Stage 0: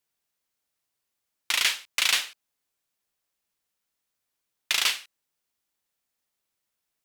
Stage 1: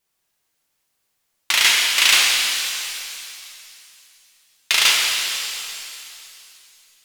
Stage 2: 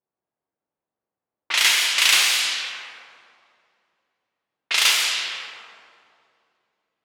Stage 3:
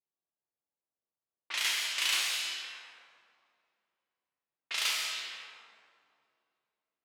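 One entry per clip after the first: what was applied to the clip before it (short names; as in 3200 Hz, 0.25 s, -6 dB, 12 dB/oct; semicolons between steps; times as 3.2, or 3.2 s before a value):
vibrato 5.8 Hz 43 cents; shimmer reverb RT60 2.7 s, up +7 st, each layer -8 dB, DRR -2 dB; gain +6 dB
HPF 220 Hz 6 dB/oct; low-pass opened by the level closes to 750 Hz, open at -13.5 dBFS; gain -2 dB
resonator 71 Hz, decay 0.77 s, harmonics all, mix 70%; gain -5.5 dB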